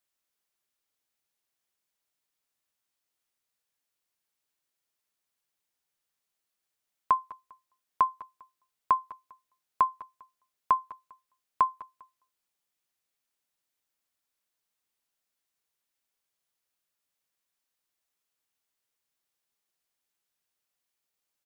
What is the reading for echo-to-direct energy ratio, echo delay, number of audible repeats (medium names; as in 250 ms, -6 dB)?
-19.5 dB, 200 ms, 2